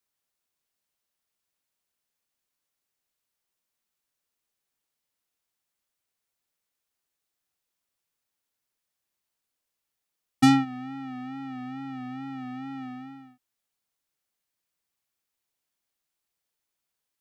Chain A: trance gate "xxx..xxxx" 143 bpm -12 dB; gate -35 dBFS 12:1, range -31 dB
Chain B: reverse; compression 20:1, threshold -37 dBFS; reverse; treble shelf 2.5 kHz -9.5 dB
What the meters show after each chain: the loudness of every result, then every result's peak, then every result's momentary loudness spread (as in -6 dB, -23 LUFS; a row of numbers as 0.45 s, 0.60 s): -23.0 LUFS, -40.5 LUFS; -10.5 dBFS, -33.5 dBFS; 10 LU, 6 LU